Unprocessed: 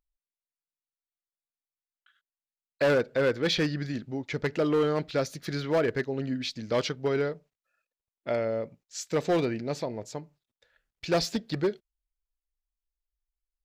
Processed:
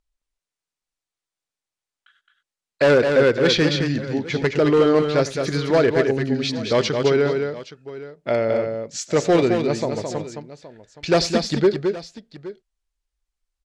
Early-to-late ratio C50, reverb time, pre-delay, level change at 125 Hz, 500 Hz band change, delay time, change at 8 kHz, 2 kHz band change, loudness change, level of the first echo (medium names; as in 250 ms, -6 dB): no reverb, no reverb, no reverb, +8.5 dB, +10.0 dB, 91 ms, +8.5 dB, +8.5 dB, +9.0 dB, -20.0 dB